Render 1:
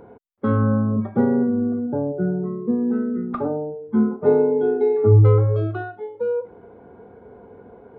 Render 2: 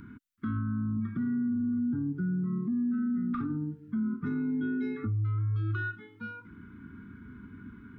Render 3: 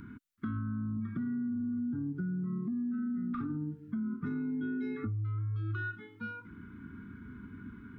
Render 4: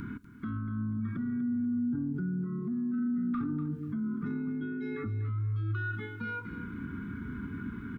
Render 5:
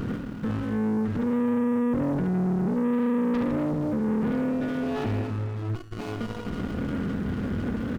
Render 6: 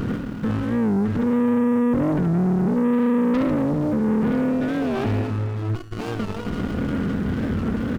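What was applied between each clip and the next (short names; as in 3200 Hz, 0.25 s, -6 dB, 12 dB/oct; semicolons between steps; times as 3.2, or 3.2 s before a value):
Chebyshev band-stop 280–1300 Hz, order 3; compressor 2:1, threshold -31 dBFS, peak gain reduction 11 dB; limiter -29.5 dBFS, peak gain reduction 11 dB; gain +4.5 dB
compressor, threshold -32 dBFS, peak gain reduction 5 dB
limiter -37 dBFS, peak gain reduction 11 dB; feedback echo 0.244 s, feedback 30%, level -12 dB; on a send at -18 dB: reverb RT60 0.50 s, pre-delay 6 ms; on the sum: gain +8.5 dB
reverse bouncing-ball echo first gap 70 ms, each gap 1.25×, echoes 5; sample leveller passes 3; running maximum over 33 samples
record warp 45 rpm, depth 160 cents; gain +5 dB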